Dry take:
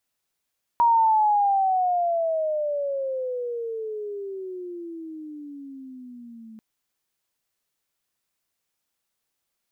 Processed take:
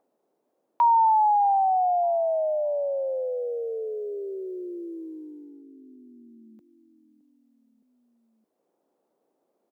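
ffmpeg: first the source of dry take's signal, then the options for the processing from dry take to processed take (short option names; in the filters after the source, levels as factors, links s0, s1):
-f lavfi -i "aevalsrc='pow(10,(-14.5-26*t/5.79)/20)*sin(2*PI*951*5.79/(-25.5*log(2)/12)*(exp(-25.5*log(2)/12*t/5.79)-1))':d=5.79:s=44100"
-filter_complex "[0:a]agate=range=0.282:threshold=0.0126:ratio=16:detection=peak,asplit=2[s0][s1];[s1]adelay=616,lowpass=f=1000:p=1,volume=0.0944,asplit=2[s2][s3];[s3]adelay=616,lowpass=f=1000:p=1,volume=0.47,asplit=2[s4][s5];[s5]adelay=616,lowpass=f=1000:p=1,volume=0.47[s6];[s0][s2][s4][s6]amix=inputs=4:normalize=0,acrossover=split=110|260|650[s7][s8][s9][s10];[s9]acompressor=mode=upward:threshold=0.00447:ratio=2.5[s11];[s7][s8][s11][s10]amix=inputs=4:normalize=0"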